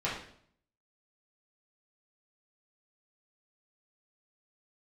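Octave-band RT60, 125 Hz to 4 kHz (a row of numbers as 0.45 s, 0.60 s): 0.80 s, 0.70 s, 0.65 s, 0.55 s, 0.55 s, 0.55 s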